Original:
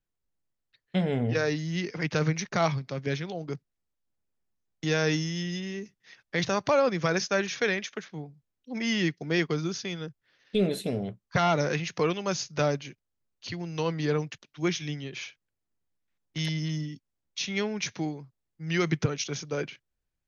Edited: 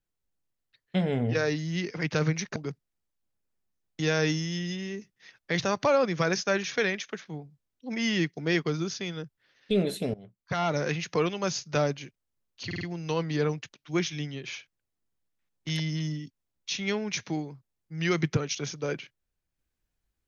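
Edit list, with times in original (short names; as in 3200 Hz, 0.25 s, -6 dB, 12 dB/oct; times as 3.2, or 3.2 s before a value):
2.56–3.4 cut
10.98–11.8 fade in, from -19.5 dB
13.5 stutter 0.05 s, 4 plays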